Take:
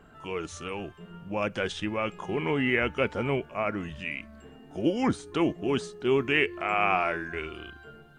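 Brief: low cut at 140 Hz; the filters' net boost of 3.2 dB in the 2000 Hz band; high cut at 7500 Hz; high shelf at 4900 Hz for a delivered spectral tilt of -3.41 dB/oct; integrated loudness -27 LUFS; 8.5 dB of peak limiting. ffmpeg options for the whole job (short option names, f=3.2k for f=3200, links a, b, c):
-af "highpass=140,lowpass=7.5k,equalizer=f=2k:t=o:g=5,highshelf=f=4.9k:g=-6,volume=3dB,alimiter=limit=-13dB:level=0:latency=1"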